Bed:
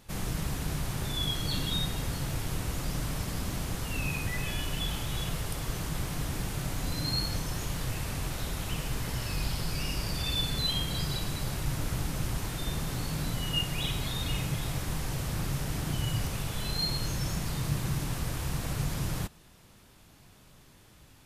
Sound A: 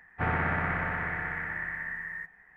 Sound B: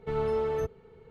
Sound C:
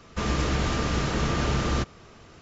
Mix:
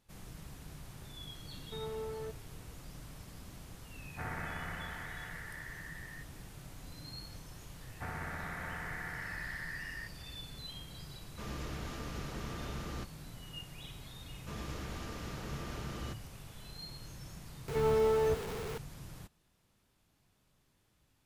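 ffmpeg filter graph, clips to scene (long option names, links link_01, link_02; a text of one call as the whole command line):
ffmpeg -i bed.wav -i cue0.wav -i cue1.wav -i cue2.wav -filter_complex "[2:a]asplit=2[link_01][link_02];[1:a]asplit=2[link_03][link_04];[3:a]asplit=2[link_05][link_06];[0:a]volume=-16.5dB[link_07];[link_04]acompressor=threshold=-31dB:ratio=6:attack=3.2:release=140:knee=1:detection=peak[link_08];[link_02]aeval=exprs='val(0)+0.5*0.02*sgn(val(0))':channel_layout=same[link_09];[link_01]atrim=end=1.1,asetpts=PTS-STARTPTS,volume=-12.5dB,afade=type=in:duration=0.004:curve=hsin,afade=type=out:start_time=1.096:duration=0.004:curve=hsin,adelay=1650[link_10];[link_03]atrim=end=2.56,asetpts=PTS-STARTPTS,volume=-12.5dB,afade=type=in:duration=0.004:curve=hsin,afade=type=out:start_time=2.556:duration=0.004:curve=hsin,adelay=3980[link_11];[link_08]atrim=end=2.56,asetpts=PTS-STARTPTS,volume=-6.5dB,afade=type=in:duration=0.004:curve=hsin,afade=type=out:start_time=2.556:duration=0.004:curve=hsin,adelay=7820[link_12];[link_05]atrim=end=2.41,asetpts=PTS-STARTPTS,volume=-16.5dB,afade=type=in:duration=0.004:curve=hsin,afade=type=out:start_time=2.406:duration=0.004:curve=hsin,adelay=11210[link_13];[link_06]atrim=end=2.41,asetpts=PTS-STARTPTS,volume=-17dB,afade=type=in:duration=0.004:curve=hsin,afade=type=out:start_time=2.406:duration=0.004:curve=hsin,adelay=14300[link_14];[link_09]atrim=end=1.1,asetpts=PTS-STARTPTS,volume=-1.5dB,afade=type=in:duration=0.004:curve=hsin,afade=type=out:start_time=1.096:duration=0.004:curve=hsin,adelay=17680[link_15];[link_07][link_10][link_11][link_12][link_13][link_14][link_15]amix=inputs=7:normalize=0" out.wav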